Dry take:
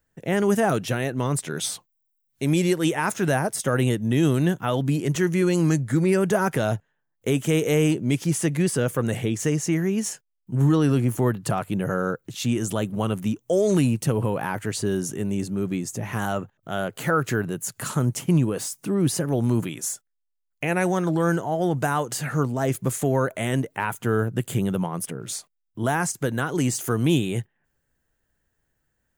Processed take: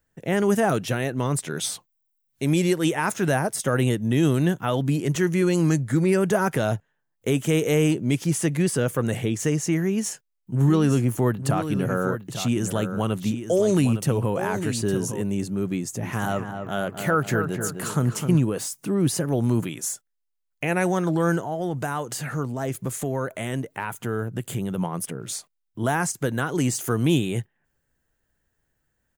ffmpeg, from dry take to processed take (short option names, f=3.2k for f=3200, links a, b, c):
-filter_complex "[0:a]asplit=3[a][b][c];[a]afade=t=out:st=10.66:d=0.02[d];[b]aecho=1:1:859:0.335,afade=t=in:st=10.66:d=0.02,afade=t=out:st=15.21:d=0.02[e];[c]afade=t=in:st=15.21:d=0.02[f];[d][e][f]amix=inputs=3:normalize=0,asettb=1/sr,asplit=3[g][h][i];[g]atrim=end=15.774[j];[h]atrim=start=15.77:end=18.4,asetpts=PTS-STARTPTS,afade=t=in:d=0.004:c=qsin,afade=t=out:st=2.626:d=0.004:c=qsin,asplit=2[k][l];[l]adelay=257,lowpass=f=2k:p=1,volume=-6.5dB,asplit=2[m][n];[n]adelay=257,lowpass=f=2k:p=1,volume=0.47,asplit=2[o][p];[p]adelay=257,lowpass=f=2k:p=1,volume=0.47,asplit=2[q][r];[r]adelay=257,lowpass=f=2k:p=1,volume=0.47,asplit=2[s][t];[t]adelay=257,lowpass=f=2k:p=1,volume=0.47,asplit=2[u][v];[v]adelay=257,lowpass=f=2k:p=1,volume=0.47[w];[k][m][o][q][s][u][w]amix=inputs=7:normalize=0,atrim=end_sample=115983[x];[i]atrim=start=18.396[y];[j][x]acrossfade=d=0.004:c1=hsin:c2=qsin[z];[z][y]acrossfade=d=0.004:c1=qsin:c2=hsin,asettb=1/sr,asplit=3[aa][ab][ac];[aa]atrim=end=21.404[ad];[ab]atrim=start=21.4:end=24.78,asetpts=PTS-STARTPTS,afade=t=in:d=0.004:c=qsin,afade=t=out:st=3.376:d=0.004:c=qsin,acompressor=threshold=-30dB:ratio=1.5:attack=3.2:release=140:knee=1:detection=peak[ae];[ac]atrim=start=24.776[af];[ad][ae]acrossfade=d=0.004:c1=hsin:c2=qsin[ag];[ag][af]acrossfade=d=0.004:c1=qsin:c2=hsin"